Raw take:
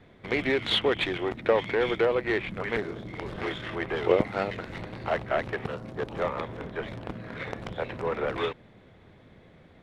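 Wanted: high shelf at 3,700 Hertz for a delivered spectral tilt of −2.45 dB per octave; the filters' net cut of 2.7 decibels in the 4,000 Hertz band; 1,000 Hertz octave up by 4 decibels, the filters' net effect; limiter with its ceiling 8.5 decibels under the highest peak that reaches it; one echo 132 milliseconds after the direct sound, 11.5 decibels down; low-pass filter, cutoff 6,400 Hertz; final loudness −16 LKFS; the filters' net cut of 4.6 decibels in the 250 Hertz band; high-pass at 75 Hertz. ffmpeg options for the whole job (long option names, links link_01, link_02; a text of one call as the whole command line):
ffmpeg -i in.wav -af "highpass=75,lowpass=6400,equalizer=frequency=250:width_type=o:gain=-7.5,equalizer=frequency=1000:width_type=o:gain=5.5,highshelf=frequency=3700:gain=7.5,equalizer=frequency=4000:width_type=o:gain=-8,alimiter=limit=-18dB:level=0:latency=1,aecho=1:1:132:0.266,volume=15.5dB" out.wav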